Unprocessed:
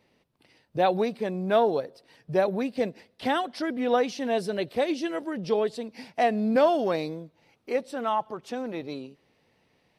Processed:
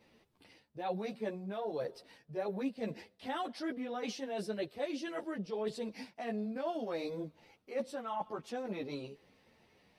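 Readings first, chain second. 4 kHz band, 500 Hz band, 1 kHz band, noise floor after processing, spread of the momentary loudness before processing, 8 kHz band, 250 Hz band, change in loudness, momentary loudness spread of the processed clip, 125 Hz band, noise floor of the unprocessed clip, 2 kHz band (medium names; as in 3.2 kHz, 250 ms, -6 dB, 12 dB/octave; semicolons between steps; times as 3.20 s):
-10.0 dB, -12.5 dB, -13.5 dB, -71 dBFS, 13 LU, -7.0 dB, -10.0 dB, -12.5 dB, 6 LU, -9.5 dB, -69 dBFS, -12.0 dB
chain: reverse; compression 12:1, threshold -35 dBFS, peak gain reduction 19.5 dB; reverse; three-phase chorus; trim +3.5 dB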